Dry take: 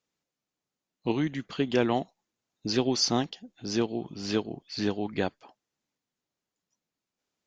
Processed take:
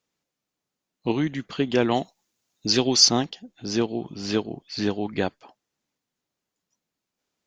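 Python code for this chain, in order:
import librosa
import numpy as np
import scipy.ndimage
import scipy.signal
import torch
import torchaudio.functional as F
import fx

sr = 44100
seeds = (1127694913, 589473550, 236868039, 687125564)

y = fx.high_shelf(x, sr, hz=3300.0, db=10.0, at=(1.91, 3.09))
y = y * 10.0 ** (3.5 / 20.0)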